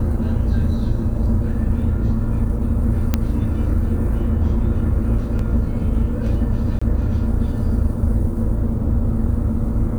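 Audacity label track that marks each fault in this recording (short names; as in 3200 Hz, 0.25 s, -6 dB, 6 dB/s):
3.140000	3.140000	pop -4 dBFS
5.390000	5.390000	gap 3 ms
6.790000	6.820000	gap 25 ms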